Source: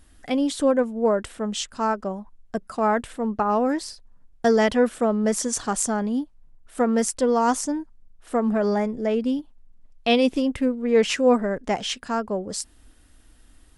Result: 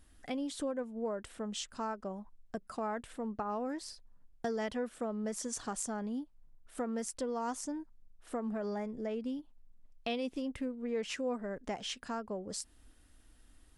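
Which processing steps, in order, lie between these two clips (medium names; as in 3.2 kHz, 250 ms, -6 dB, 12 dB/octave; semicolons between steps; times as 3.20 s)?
compression 2.5:1, threshold -29 dBFS, peak gain reduction 11 dB; trim -8 dB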